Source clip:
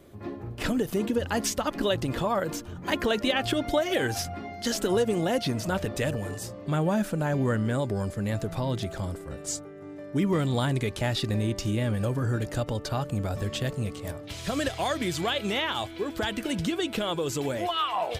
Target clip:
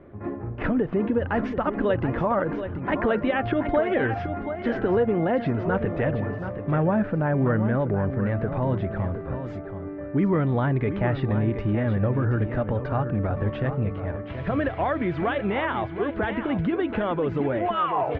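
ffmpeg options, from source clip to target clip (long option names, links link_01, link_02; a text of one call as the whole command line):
ffmpeg -i in.wav -filter_complex "[0:a]lowpass=frequency=2000:width=0.5412,lowpass=frequency=2000:width=1.3066,asplit=2[link_01][link_02];[link_02]alimiter=limit=-23dB:level=0:latency=1,volume=-2.5dB[link_03];[link_01][link_03]amix=inputs=2:normalize=0,aecho=1:1:728:0.335" out.wav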